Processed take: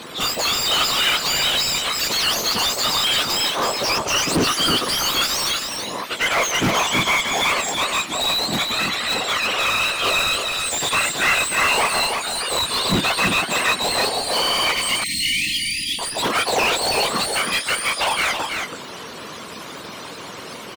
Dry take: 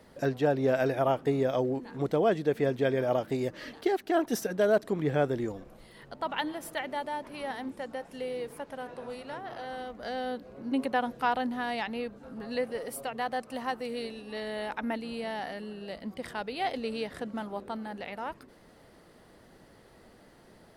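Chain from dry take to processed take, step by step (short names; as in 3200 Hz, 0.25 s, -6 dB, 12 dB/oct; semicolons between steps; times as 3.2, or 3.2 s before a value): spectrum mirrored in octaves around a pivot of 1400 Hz; in parallel at -5 dB: bit-crush 6-bit; on the sum: whisperiser; overdrive pedal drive 36 dB, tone 2900 Hz, clips at -10 dBFS; 14.71–15.99 brick-wall FIR band-stop 330–1800 Hz; on a send: echo 0.326 s -5 dB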